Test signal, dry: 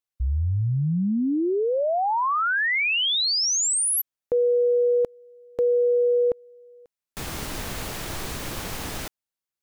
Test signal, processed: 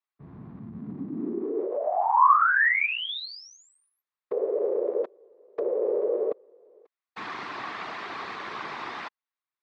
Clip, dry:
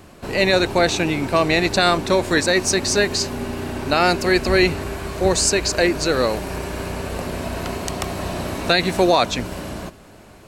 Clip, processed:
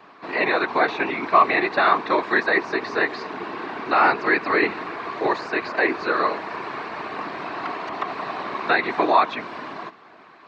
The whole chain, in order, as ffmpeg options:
-filter_complex "[0:a]afftfilt=real='hypot(re,im)*cos(2*PI*random(0))':imag='hypot(re,im)*sin(2*PI*random(1))':win_size=512:overlap=0.75,acrossover=split=2700[a][b];[b]acompressor=threshold=-41dB:ratio=4:attack=1:release=60[c];[a][c]amix=inputs=2:normalize=0,highpass=400,equalizer=f=540:t=q:w=4:g=-9,equalizer=f=1.1k:t=q:w=4:g=8,equalizer=f=1.9k:t=q:w=4:g=3,equalizer=f=3k:t=q:w=4:g=-5,lowpass=f=3.9k:w=0.5412,lowpass=f=3.9k:w=1.3066,volume=6dB"

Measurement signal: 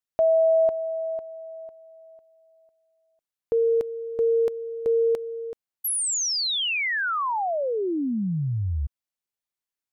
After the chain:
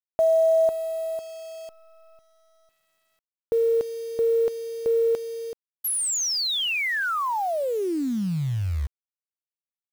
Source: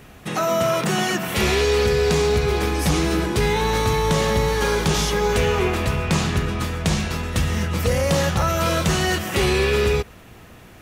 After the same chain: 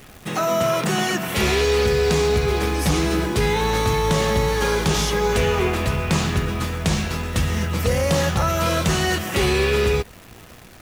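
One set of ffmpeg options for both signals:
-af "acrusher=bits=8:dc=4:mix=0:aa=0.000001"

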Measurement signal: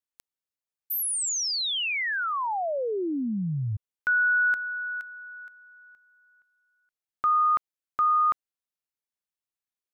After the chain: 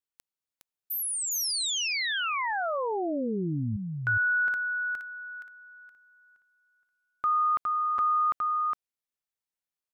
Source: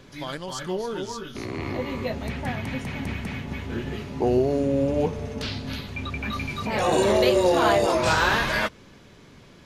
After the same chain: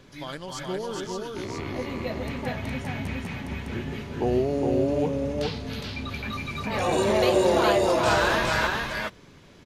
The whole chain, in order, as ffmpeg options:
-af "aecho=1:1:412:0.708,volume=-3dB"

